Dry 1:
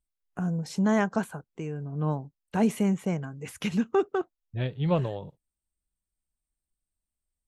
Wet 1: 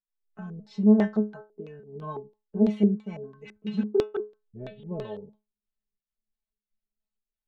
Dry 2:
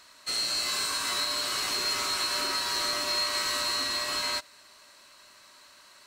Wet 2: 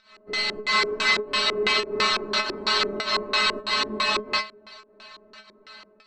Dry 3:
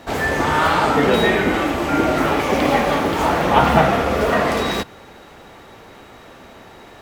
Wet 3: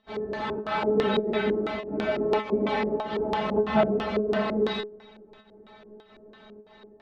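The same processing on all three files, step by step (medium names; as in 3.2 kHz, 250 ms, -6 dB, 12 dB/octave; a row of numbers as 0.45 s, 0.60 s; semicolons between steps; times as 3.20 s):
volume shaper 100 bpm, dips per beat 1, -21 dB, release 188 ms; treble shelf 3.2 kHz -11.5 dB; inharmonic resonator 210 Hz, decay 0.26 s, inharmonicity 0.002; level rider gain up to 4 dB; LFO low-pass square 3 Hz 390–3900 Hz; peak normalisation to -9 dBFS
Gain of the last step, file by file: +5.0 dB, +20.5 dB, 0.0 dB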